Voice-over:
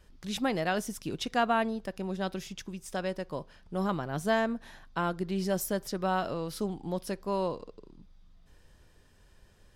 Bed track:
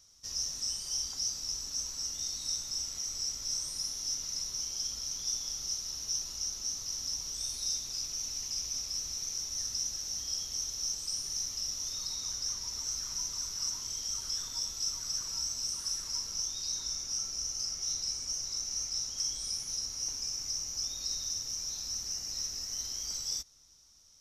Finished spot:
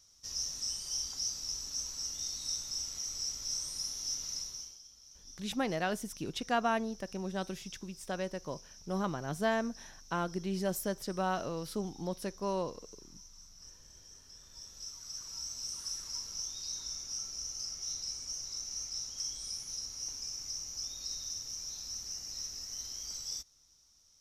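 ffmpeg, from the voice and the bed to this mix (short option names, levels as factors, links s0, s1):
-filter_complex "[0:a]adelay=5150,volume=0.668[s0];[1:a]volume=4.47,afade=t=out:st=4.32:d=0.48:silence=0.133352,afade=t=in:st=14.39:d=1.38:silence=0.177828[s1];[s0][s1]amix=inputs=2:normalize=0"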